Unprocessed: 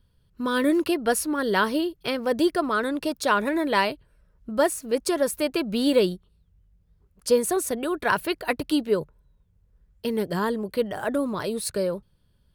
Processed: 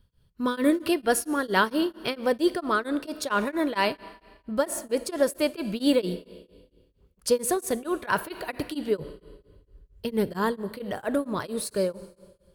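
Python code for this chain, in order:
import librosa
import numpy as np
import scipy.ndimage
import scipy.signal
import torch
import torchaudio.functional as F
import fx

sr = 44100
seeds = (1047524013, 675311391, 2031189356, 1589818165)

y = fx.low_shelf(x, sr, hz=130.0, db=10.0, at=(8.99, 10.33))
y = fx.rev_schroeder(y, sr, rt60_s=1.5, comb_ms=28, drr_db=15.5)
y = y * np.abs(np.cos(np.pi * 4.4 * np.arange(len(y)) / sr))
y = F.gain(torch.from_numpy(y), 1.0).numpy()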